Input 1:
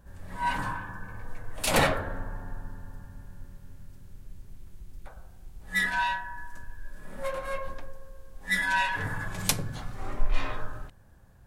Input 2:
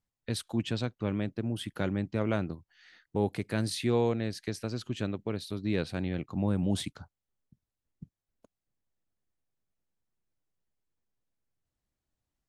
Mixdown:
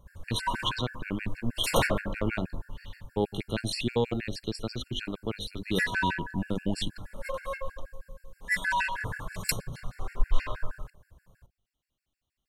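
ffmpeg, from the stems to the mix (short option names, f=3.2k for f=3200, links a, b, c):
-filter_complex "[0:a]aecho=1:1:1.9:0.32,volume=0dB[a];[1:a]equalizer=f=3.1k:t=o:w=0.83:g=9.5,volume=2.5dB[b];[a][b]amix=inputs=2:normalize=0,bandreject=f=50.51:t=h:w=4,bandreject=f=101.02:t=h:w=4,bandreject=f=151.53:t=h:w=4,bandreject=f=202.04:t=h:w=4,bandreject=f=252.55:t=h:w=4,bandreject=f=303.06:t=h:w=4,bandreject=f=353.57:t=h:w=4,bandreject=f=404.08:t=h:w=4,bandreject=f=454.59:t=h:w=4,bandreject=f=505.1:t=h:w=4,bandreject=f=555.61:t=h:w=4,bandreject=f=606.12:t=h:w=4,bandreject=f=656.63:t=h:w=4,bandreject=f=707.14:t=h:w=4,bandreject=f=757.65:t=h:w=4,bandreject=f=808.16:t=h:w=4,bandreject=f=858.67:t=h:w=4,afftfilt=real='re*gt(sin(2*PI*6.3*pts/sr)*(1-2*mod(floor(b*sr/1024/1400),2)),0)':imag='im*gt(sin(2*PI*6.3*pts/sr)*(1-2*mod(floor(b*sr/1024/1400),2)),0)':win_size=1024:overlap=0.75"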